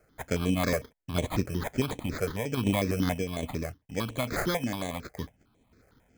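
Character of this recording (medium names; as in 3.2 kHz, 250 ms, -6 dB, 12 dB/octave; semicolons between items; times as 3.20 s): random-step tremolo; aliases and images of a low sample rate 2.8 kHz, jitter 0%; notches that jump at a steady rate 11 Hz 960–4900 Hz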